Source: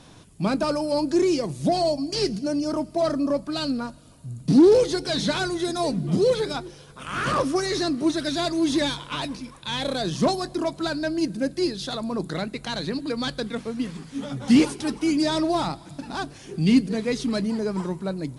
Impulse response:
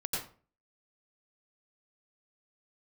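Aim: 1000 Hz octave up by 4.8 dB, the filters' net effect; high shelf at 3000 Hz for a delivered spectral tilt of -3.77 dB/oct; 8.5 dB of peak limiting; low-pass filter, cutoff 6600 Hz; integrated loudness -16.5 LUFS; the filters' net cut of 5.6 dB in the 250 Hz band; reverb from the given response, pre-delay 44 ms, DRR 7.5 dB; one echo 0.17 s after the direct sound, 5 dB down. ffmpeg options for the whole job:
-filter_complex "[0:a]lowpass=6.6k,equalizer=f=250:t=o:g=-8,equalizer=f=1k:t=o:g=7.5,highshelf=f=3k:g=-3.5,alimiter=limit=-19dB:level=0:latency=1,aecho=1:1:170:0.562,asplit=2[a][b];[1:a]atrim=start_sample=2205,adelay=44[c];[b][c]afir=irnorm=-1:irlink=0,volume=-11.5dB[d];[a][d]amix=inputs=2:normalize=0,volume=10.5dB"

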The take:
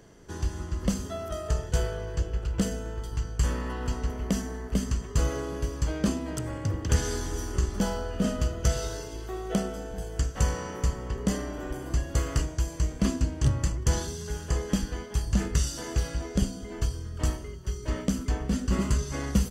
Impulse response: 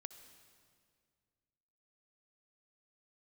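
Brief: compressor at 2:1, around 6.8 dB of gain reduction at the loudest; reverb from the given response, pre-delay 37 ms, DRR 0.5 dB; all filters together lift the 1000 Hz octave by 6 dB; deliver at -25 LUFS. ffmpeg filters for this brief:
-filter_complex "[0:a]equalizer=f=1k:t=o:g=7.5,acompressor=threshold=-31dB:ratio=2,asplit=2[a][b];[1:a]atrim=start_sample=2205,adelay=37[c];[b][c]afir=irnorm=-1:irlink=0,volume=4.5dB[d];[a][d]amix=inputs=2:normalize=0,volume=6.5dB"

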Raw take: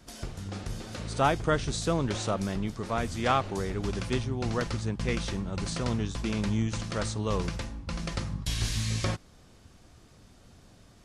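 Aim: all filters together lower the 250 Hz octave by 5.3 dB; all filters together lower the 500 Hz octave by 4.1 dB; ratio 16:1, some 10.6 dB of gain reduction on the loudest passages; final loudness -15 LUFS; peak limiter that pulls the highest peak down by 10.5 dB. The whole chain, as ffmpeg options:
-af "equalizer=f=250:t=o:g=-6.5,equalizer=f=500:t=o:g=-3.5,acompressor=threshold=-31dB:ratio=16,volume=25dB,alimiter=limit=-5.5dB:level=0:latency=1"

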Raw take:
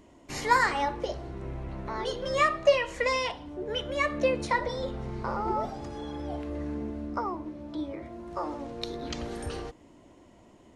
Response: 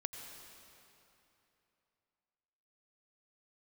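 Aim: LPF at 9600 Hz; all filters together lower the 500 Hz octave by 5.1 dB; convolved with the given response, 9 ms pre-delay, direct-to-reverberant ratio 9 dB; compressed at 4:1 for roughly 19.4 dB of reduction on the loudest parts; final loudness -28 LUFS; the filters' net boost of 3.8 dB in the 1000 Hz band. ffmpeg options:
-filter_complex "[0:a]lowpass=9.6k,equalizer=f=500:t=o:g=-7.5,equalizer=f=1k:t=o:g=6,acompressor=threshold=-38dB:ratio=4,asplit=2[a][b];[1:a]atrim=start_sample=2205,adelay=9[c];[b][c]afir=irnorm=-1:irlink=0,volume=-8dB[d];[a][d]amix=inputs=2:normalize=0,volume=12.5dB"

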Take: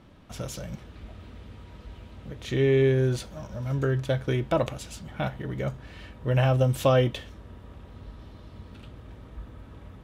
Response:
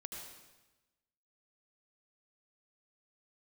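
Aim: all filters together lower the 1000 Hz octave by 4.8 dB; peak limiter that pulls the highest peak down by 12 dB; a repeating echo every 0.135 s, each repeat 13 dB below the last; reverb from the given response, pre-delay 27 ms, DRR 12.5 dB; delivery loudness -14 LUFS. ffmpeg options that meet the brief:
-filter_complex "[0:a]equalizer=f=1k:t=o:g=-7,alimiter=limit=-23.5dB:level=0:latency=1,aecho=1:1:135|270|405:0.224|0.0493|0.0108,asplit=2[a][b];[1:a]atrim=start_sample=2205,adelay=27[c];[b][c]afir=irnorm=-1:irlink=0,volume=-10dB[d];[a][d]amix=inputs=2:normalize=0,volume=20dB"

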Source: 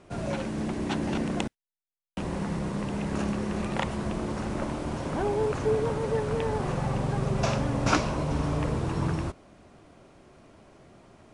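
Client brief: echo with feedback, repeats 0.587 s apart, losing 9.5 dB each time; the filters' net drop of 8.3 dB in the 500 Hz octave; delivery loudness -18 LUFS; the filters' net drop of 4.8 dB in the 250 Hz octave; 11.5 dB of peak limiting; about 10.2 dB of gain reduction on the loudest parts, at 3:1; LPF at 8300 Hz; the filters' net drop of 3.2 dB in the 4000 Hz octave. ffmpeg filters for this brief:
-af "lowpass=8.3k,equalizer=f=250:t=o:g=-4.5,equalizer=f=500:t=o:g=-9,equalizer=f=4k:t=o:g=-4,acompressor=threshold=-35dB:ratio=3,alimiter=level_in=6dB:limit=-24dB:level=0:latency=1,volume=-6dB,aecho=1:1:587|1174|1761|2348:0.335|0.111|0.0365|0.012,volume=22dB"

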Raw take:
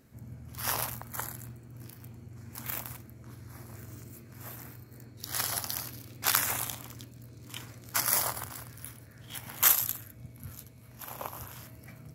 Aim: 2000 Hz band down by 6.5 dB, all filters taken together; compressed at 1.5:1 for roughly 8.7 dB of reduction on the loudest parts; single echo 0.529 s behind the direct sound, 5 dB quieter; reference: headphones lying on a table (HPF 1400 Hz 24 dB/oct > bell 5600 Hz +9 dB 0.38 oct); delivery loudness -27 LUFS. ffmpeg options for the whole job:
-af "equalizer=f=2k:t=o:g=-7.5,acompressor=threshold=-42dB:ratio=1.5,highpass=f=1.4k:w=0.5412,highpass=f=1.4k:w=1.3066,equalizer=f=5.6k:t=o:w=0.38:g=9,aecho=1:1:529:0.562,volume=9.5dB"

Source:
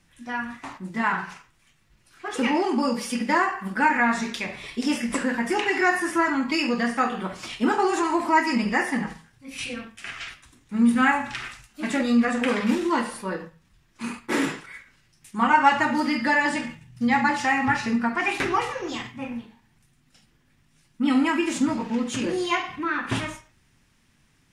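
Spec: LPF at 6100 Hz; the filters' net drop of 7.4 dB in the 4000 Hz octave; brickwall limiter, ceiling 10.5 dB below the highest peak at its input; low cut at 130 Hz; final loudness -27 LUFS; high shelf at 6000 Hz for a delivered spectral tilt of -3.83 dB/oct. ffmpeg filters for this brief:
-af "highpass=130,lowpass=6.1k,equalizer=f=4k:t=o:g=-7.5,highshelf=f=6k:g=-8.5,volume=-0.5dB,alimiter=limit=-16dB:level=0:latency=1"

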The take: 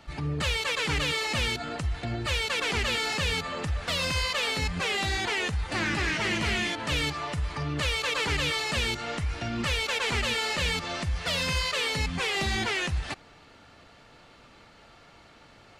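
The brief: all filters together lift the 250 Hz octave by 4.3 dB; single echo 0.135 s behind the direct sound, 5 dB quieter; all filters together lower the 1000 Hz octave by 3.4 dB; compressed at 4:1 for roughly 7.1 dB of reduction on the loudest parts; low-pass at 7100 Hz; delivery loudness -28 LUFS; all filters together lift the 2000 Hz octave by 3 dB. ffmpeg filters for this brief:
-af "lowpass=7.1k,equalizer=f=250:t=o:g=6,equalizer=f=1k:t=o:g=-6.5,equalizer=f=2k:t=o:g=5,acompressor=threshold=-31dB:ratio=4,aecho=1:1:135:0.562,volume=3dB"

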